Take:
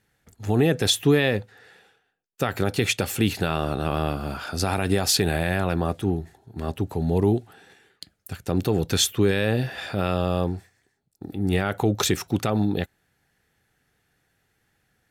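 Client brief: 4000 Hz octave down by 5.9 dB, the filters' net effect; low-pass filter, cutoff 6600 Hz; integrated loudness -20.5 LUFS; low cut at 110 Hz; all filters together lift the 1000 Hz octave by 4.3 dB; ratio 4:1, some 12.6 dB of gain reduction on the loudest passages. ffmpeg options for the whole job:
-af "highpass=110,lowpass=6.6k,equalizer=f=1k:t=o:g=6.5,equalizer=f=4k:t=o:g=-7,acompressor=threshold=-30dB:ratio=4,volume=14dB"

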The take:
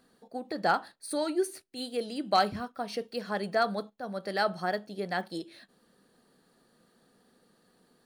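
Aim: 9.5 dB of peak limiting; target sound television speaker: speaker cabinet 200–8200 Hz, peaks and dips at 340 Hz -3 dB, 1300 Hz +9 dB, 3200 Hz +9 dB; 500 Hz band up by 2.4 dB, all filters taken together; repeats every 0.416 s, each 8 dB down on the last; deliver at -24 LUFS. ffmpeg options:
-af "equalizer=f=500:t=o:g=3.5,alimiter=limit=-22dB:level=0:latency=1,highpass=f=200:w=0.5412,highpass=f=200:w=1.3066,equalizer=f=340:t=q:w=4:g=-3,equalizer=f=1.3k:t=q:w=4:g=9,equalizer=f=3.2k:t=q:w=4:g=9,lowpass=f=8.2k:w=0.5412,lowpass=f=8.2k:w=1.3066,aecho=1:1:416|832|1248|1664|2080:0.398|0.159|0.0637|0.0255|0.0102,volume=9dB"

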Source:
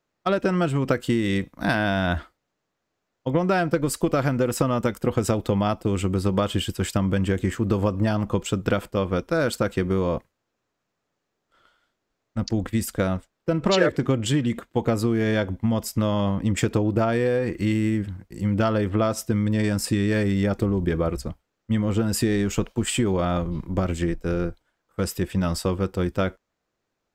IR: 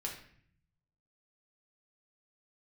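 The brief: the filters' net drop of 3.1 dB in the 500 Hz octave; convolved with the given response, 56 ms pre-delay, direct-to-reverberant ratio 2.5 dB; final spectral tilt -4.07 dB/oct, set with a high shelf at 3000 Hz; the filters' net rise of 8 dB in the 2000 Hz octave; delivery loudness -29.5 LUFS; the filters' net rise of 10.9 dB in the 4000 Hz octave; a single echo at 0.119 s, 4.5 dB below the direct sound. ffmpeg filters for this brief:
-filter_complex "[0:a]equalizer=f=500:t=o:g=-4.5,equalizer=f=2k:t=o:g=7,highshelf=f=3k:g=7,equalizer=f=4k:t=o:g=6.5,aecho=1:1:119:0.596,asplit=2[a][b];[1:a]atrim=start_sample=2205,adelay=56[c];[b][c]afir=irnorm=-1:irlink=0,volume=-3dB[d];[a][d]amix=inputs=2:normalize=0,volume=-10dB"

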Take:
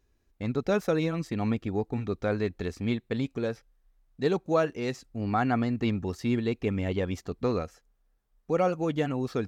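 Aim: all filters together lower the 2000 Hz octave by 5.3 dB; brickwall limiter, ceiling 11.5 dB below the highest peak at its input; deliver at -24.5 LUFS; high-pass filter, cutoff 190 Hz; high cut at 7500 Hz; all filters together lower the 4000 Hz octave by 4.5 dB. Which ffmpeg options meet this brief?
-af "highpass=190,lowpass=7.5k,equalizer=f=2k:t=o:g=-6.5,equalizer=f=4k:t=o:g=-3,volume=11.5dB,alimiter=limit=-13.5dB:level=0:latency=1"

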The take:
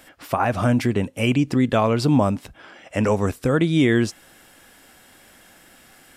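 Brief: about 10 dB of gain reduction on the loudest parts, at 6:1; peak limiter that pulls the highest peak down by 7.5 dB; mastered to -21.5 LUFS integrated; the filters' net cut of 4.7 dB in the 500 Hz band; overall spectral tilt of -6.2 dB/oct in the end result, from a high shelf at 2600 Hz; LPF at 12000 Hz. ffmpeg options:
-af "lowpass=12k,equalizer=f=500:t=o:g=-6,highshelf=f=2.6k:g=-4,acompressor=threshold=-26dB:ratio=6,volume=11dB,alimiter=limit=-10.5dB:level=0:latency=1"

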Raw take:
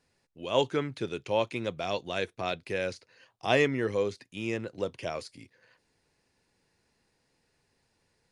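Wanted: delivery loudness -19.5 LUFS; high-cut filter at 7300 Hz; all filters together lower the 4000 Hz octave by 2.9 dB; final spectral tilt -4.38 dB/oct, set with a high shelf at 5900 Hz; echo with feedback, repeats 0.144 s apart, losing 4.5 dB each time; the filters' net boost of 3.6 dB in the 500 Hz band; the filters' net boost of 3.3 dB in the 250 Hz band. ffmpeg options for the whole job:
-af "lowpass=7.3k,equalizer=f=250:t=o:g=3,equalizer=f=500:t=o:g=3.5,equalizer=f=4k:t=o:g=-6.5,highshelf=f=5.9k:g=9,aecho=1:1:144|288|432|576|720|864|1008|1152|1296:0.596|0.357|0.214|0.129|0.0772|0.0463|0.0278|0.0167|0.01,volume=7.5dB"

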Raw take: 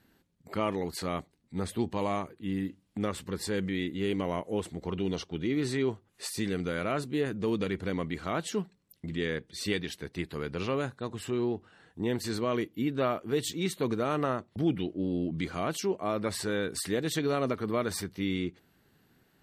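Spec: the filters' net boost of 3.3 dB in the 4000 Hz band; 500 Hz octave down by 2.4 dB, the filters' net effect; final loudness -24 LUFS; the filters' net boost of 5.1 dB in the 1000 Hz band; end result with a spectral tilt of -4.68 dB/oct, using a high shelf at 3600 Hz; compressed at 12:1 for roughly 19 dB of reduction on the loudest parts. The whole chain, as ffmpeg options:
-af "equalizer=f=500:t=o:g=-5,equalizer=f=1k:t=o:g=8,highshelf=f=3.6k:g=-5.5,equalizer=f=4k:t=o:g=7,acompressor=threshold=-43dB:ratio=12,volume=23.5dB"

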